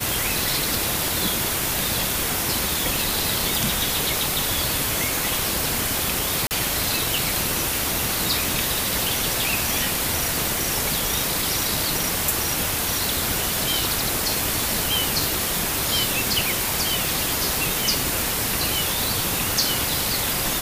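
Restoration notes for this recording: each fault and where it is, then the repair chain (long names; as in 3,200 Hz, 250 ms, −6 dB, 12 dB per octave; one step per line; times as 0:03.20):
0:06.47–0:06.51: drop-out 39 ms
0:15.24: click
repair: click removal
repair the gap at 0:06.47, 39 ms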